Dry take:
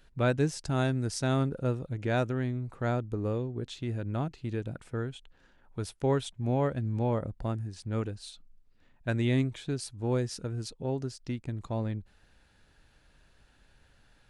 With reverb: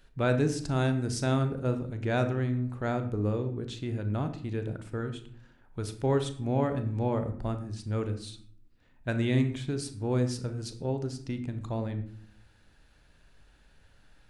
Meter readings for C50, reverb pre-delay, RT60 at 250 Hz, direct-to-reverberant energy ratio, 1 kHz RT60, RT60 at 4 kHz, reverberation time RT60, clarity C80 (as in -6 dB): 10.5 dB, 11 ms, 0.95 s, 7.5 dB, 0.50 s, 0.35 s, 0.60 s, 13.5 dB